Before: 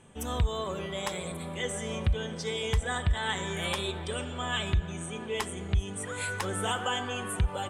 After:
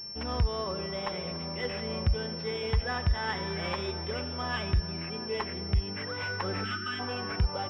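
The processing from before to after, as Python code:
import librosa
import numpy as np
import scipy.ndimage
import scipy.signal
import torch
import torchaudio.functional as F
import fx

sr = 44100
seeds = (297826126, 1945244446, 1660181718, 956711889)

y = fx.spec_erase(x, sr, start_s=6.63, length_s=0.37, low_hz=390.0, high_hz=1200.0)
y = fx.pwm(y, sr, carrier_hz=5400.0)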